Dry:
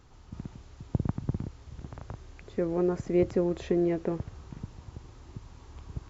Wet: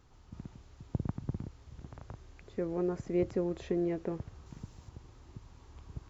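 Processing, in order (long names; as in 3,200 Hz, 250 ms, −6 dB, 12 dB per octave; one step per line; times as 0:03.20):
0:04.46–0:04.89: high-shelf EQ 6,300 Hz +11.5 dB
level −5.5 dB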